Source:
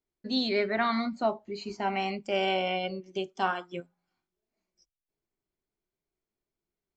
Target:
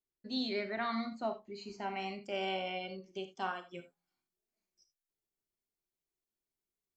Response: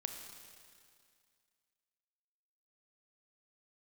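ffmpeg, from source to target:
-filter_complex "[0:a]asetnsamples=n=441:p=0,asendcmd='3.75 highshelf g 9.5',highshelf=f=4100:g=2.5[s0];[1:a]atrim=start_sample=2205,atrim=end_sample=3969,asetrate=43218,aresample=44100[s1];[s0][s1]afir=irnorm=-1:irlink=0,volume=0.447"

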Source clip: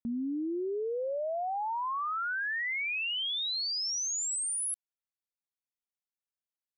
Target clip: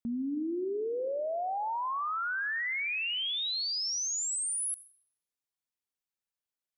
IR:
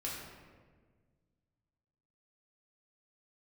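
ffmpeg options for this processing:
-filter_complex "[0:a]asplit=2[s0][s1];[1:a]atrim=start_sample=2205,adelay=75[s2];[s1][s2]afir=irnorm=-1:irlink=0,volume=0.133[s3];[s0][s3]amix=inputs=2:normalize=0"

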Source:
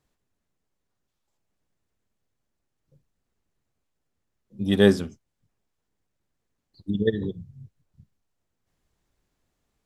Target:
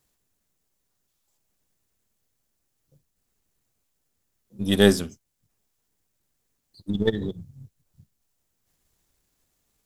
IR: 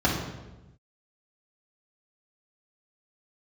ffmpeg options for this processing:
-af "aeval=exprs='if(lt(val(0),0),0.708*val(0),val(0))':c=same,crystalizer=i=2.5:c=0,volume=1.12"

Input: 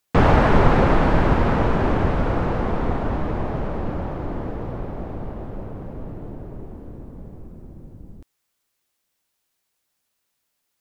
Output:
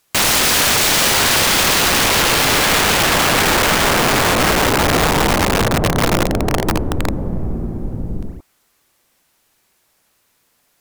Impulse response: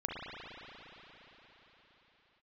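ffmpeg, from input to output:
-filter_complex "[1:a]atrim=start_sample=2205,afade=t=out:st=0.17:d=0.01,atrim=end_sample=7938,asetrate=29106,aresample=44100[s0];[0:a][s0]afir=irnorm=-1:irlink=0,acontrast=53,aeval=exprs='(mod(6.68*val(0)+1,2)-1)/6.68':c=same,volume=2.24"

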